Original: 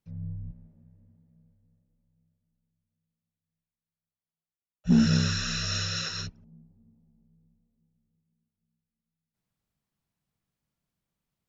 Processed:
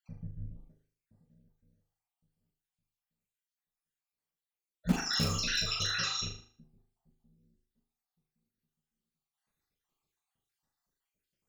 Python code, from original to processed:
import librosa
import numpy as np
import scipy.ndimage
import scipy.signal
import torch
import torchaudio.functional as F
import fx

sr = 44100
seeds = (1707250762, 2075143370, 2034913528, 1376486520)

p1 = fx.spec_dropout(x, sr, seeds[0], share_pct=67)
p2 = fx.peak_eq(p1, sr, hz=85.0, db=-9.0, octaves=2.0)
p3 = (np.mod(10.0 ** (25.0 / 20.0) * p2 + 1.0, 2.0) - 1.0) / 10.0 ** (25.0 / 20.0)
p4 = p2 + (p3 * 10.0 ** (-9.0 / 20.0))
p5 = fx.doubler(p4, sr, ms=41.0, db=-7.0)
y = p5 + fx.room_flutter(p5, sr, wall_m=6.6, rt60_s=0.46, dry=0)